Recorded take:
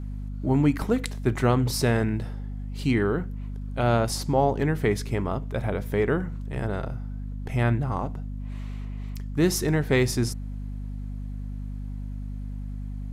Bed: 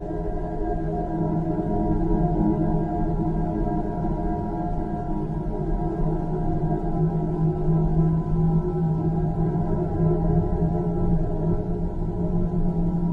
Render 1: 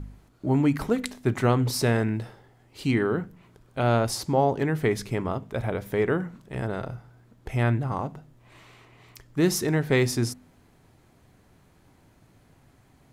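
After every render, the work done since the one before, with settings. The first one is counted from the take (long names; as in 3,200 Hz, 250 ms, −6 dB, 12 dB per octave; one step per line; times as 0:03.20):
hum removal 50 Hz, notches 5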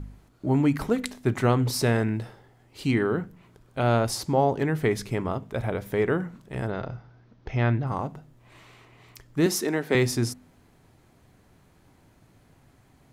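0:06.70–0:07.87: Butterworth low-pass 6,200 Hz 72 dB per octave
0:09.46–0:09.95: high-pass filter 210 Hz 24 dB per octave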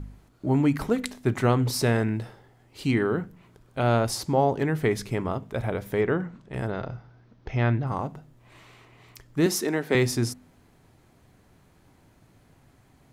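0:06.01–0:06.54: high-frequency loss of the air 75 metres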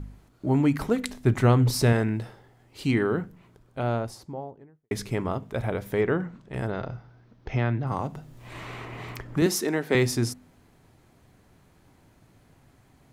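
0:01.09–0:01.93: low-shelf EQ 100 Hz +11.5 dB
0:03.15–0:04.91: fade out and dull
0:07.51–0:09.42: multiband upward and downward compressor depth 70%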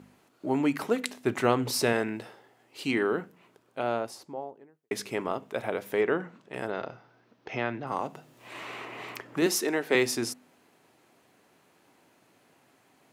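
high-pass filter 310 Hz 12 dB per octave
parametric band 2,700 Hz +4 dB 0.28 octaves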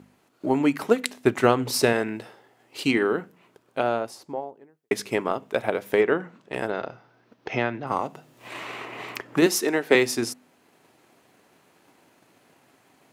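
automatic gain control gain up to 3.5 dB
transient designer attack +5 dB, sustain −2 dB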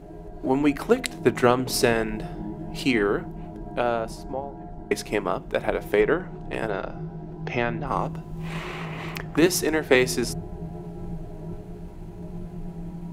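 mix in bed −12.5 dB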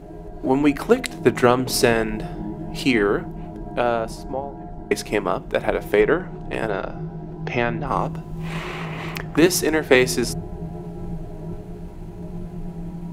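level +3.5 dB
brickwall limiter −1 dBFS, peak gain reduction 3 dB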